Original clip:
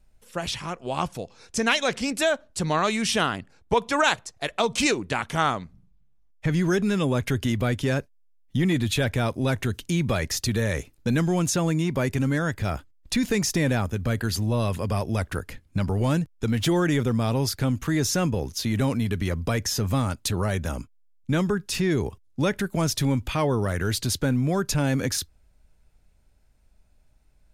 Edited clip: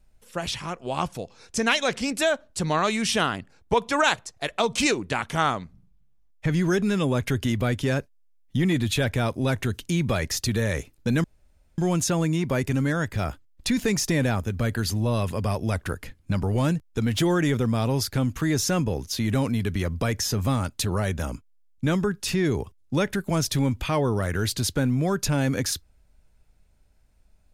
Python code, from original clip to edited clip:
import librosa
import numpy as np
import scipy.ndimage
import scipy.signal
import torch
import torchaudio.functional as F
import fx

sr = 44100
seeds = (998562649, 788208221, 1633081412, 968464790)

y = fx.edit(x, sr, fx.insert_room_tone(at_s=11.24, length_s=0.54), tone=tone)